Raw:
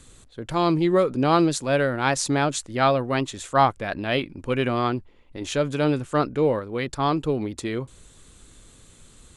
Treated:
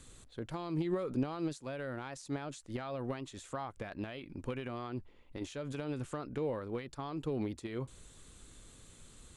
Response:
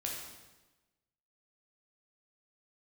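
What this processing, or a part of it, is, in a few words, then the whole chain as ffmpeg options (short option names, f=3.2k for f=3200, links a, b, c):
de-esser from a sidechain: -filter_complex "[0:a]asplit=2[a][b];[b]highpass=f=4.7k:p=1,apad=whole_len=412887[c];[a][c]sidechaincompress=threshold=-44dB:ratio=5:attack=1.1:release=90,volume=-5.5dB"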